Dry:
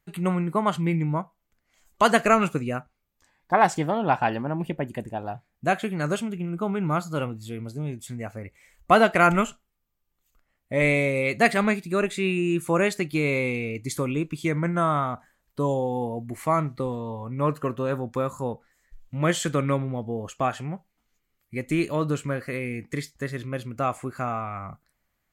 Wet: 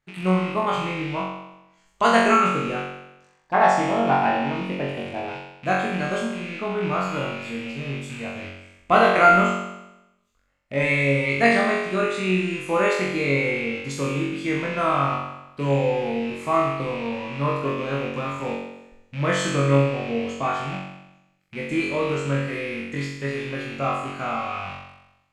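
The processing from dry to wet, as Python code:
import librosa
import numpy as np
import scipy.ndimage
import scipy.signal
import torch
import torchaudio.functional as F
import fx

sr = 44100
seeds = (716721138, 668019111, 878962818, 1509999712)

y = fx.rattle_buzz(x, sr, strikes_db=-41.0, level_db=-27.0)
y = scipy.signal.sosfilt(scipy.signal.butter(2, 6600.0, 'lowpass', fs=sr, output='sos'), y)
y = fx.low_shelf(y, sr, hz=200.0, db=-3.5)
y = fx.room_flutter(y, sr, wall_m=3.7, rt60_s=0.92)
y = F.gain(torch.from_numpy(y), -2.5).numpy()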